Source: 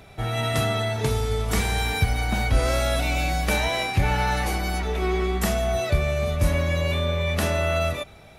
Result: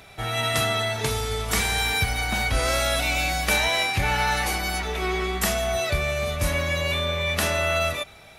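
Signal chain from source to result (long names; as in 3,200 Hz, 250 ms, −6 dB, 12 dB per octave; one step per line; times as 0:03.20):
tilt shelving filter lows −5 dB, about 740 Hz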